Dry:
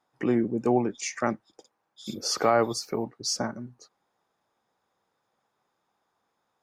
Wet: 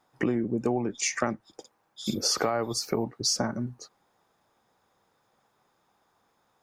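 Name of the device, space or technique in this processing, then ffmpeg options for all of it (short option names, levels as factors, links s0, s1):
ASMR close-microphone chain: -af "lowshelf=f=110:g=7,acompressor=threshold=0.0355:ratio=10,highshelf=f=11000:g=4,volume=2"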